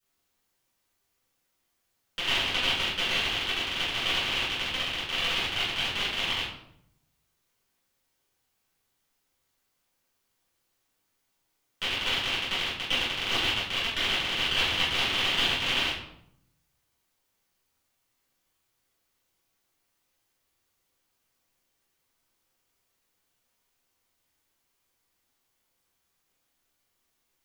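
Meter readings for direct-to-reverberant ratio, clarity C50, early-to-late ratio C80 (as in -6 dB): -12.0 dB, 2.0 dB, 6.5 dB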